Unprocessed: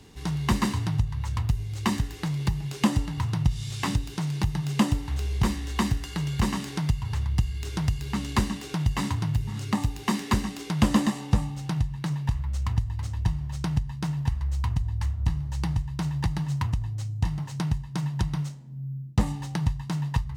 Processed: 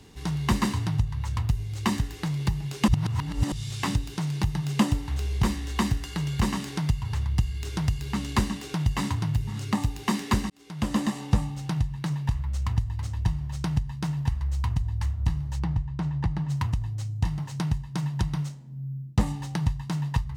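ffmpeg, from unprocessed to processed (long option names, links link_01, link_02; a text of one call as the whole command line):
ffmpeg -i in.wav -filter_complex "[0:a]asplit=3[link_01][link_02][link_03];[link_01]afade=type=out:start_time=15.58:duration=0.02[link_04];[link_02]lowpass=frequency=1500:poles=1,afade=type=in:start_time=15.58:duration=0.02,afade=type=out:start_time=16.49:duration=0.02[link_05];[link_03]afade=type=in:start_time=16.49:duration=0.02[link_06];[link_04][link_05][link_06]amix=inputs=3:normalize=0,asplit=4[link_07][link_08][link_09][link_10];[link_07]atrim=end=2.882[link_11];[link_08]atrim=start=2.878:end=3.522,asetpts=PTS-STARTPTS,areverse[link_12];[link_09]atrim=start=3.518:end=10.5,asetpts=PTS-STARTPTS,afade=type=out:start_time=6.978:duration=0.004:curve=hsin[link_13];[link_10]atrim=start=10.5,asetpts=PTS-STARTPTS,afade=type=in:duration=0.73[link_14];[link_11][link_12]acrossfade=duration=0.004:curve1=hsin:curve2=hsin[link_15];[link_13][link_14]concat=n=2:v=0:a=1[link_16];[link_15][link_16]acrossfade=duration=0.004:curve1=hsin:curve2=hsin" out.wav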